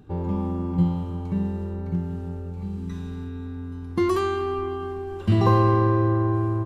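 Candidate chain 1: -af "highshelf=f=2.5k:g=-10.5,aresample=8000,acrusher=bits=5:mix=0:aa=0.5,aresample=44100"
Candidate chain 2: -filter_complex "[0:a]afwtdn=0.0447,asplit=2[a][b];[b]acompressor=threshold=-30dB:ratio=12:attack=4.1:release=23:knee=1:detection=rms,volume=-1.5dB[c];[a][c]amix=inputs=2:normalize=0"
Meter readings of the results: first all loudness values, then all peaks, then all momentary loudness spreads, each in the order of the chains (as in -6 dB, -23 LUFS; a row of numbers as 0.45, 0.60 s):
-25.5, -23.0 LUFS; -8.0, -6.5 dBFS; 14, 12 LU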